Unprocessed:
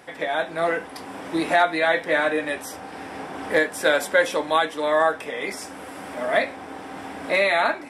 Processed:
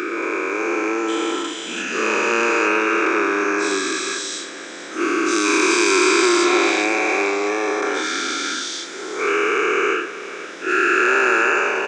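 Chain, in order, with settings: spectral dilation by 0.48 s; band shelf 1100 Hz -14.5 dB; on a send: echo 0.332 s -14 dB; on the sum: wide varispeed 0.665×; in parallel at -12 dB: soft clip -15.5 dBFS, distortion -14 dB; on the sum: HPF 380 Hz 24 dB/oct; gain +2 dB

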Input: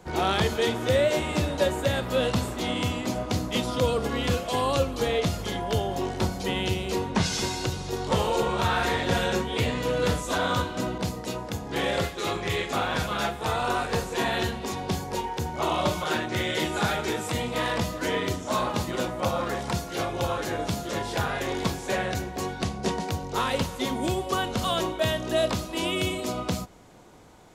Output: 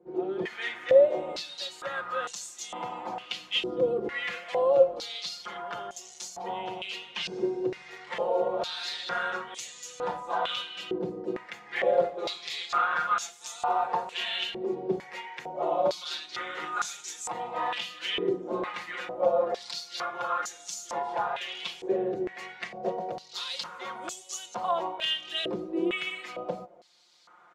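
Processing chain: comb 5.7 ms, depth 94%; AGC gain up to 9 dB; stepped band-pass 2.2 Hz 390–6600 Hz; gain -3.5 dB

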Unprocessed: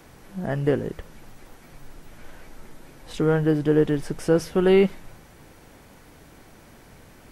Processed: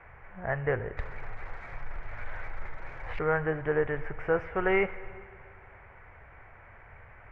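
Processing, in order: EQ curve 110 Hz 0 dB, 160 Hz -13 dB, 280 Hz -19 dB, 410 Hz -8 dB, 680 Hz -1 dB, 2200 Hz +5 dB, 4100 Hz -30 dB; 0.97–3.19 sample leveller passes 2; air absorption 110 m; plate-style reverb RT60 2.2 s, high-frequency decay 0.9×, DRR 15 dB

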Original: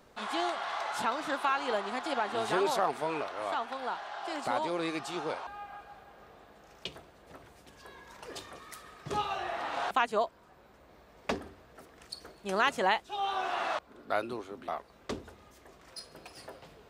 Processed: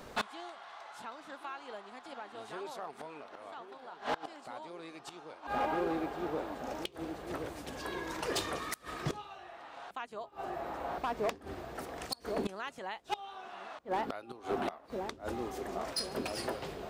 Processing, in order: narrowing echo 1.073 s, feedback 59%, band-pass 310 Hz, level -9.5 dB; flipped gate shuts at -29 dBFS, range -24 dB; hard clip -36.5 dBFS, distortion -14 dB; gain +10 dB

